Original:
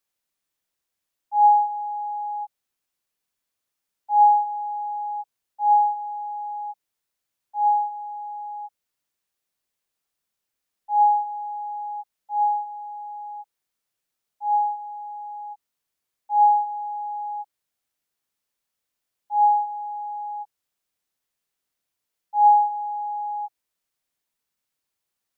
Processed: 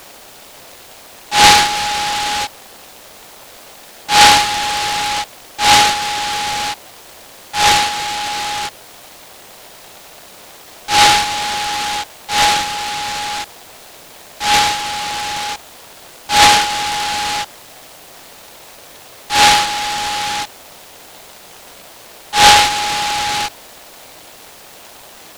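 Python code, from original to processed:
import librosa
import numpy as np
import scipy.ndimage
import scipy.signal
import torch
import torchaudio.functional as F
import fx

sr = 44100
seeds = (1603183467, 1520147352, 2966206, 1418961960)

y = x + 0.5 * 10.0 ** (-27.5 / 20.0) * np.sign(x)
y = fx.peak_eq(y, sr, hz=710.0, db=14.0, octaves=2.0)
y = fx.noise_mod_delay(y, sr, seeds[0], noise_hz=2700.0, depth_ms=0.17)
y = y * 10.0 ** (-6.5 / 20.0)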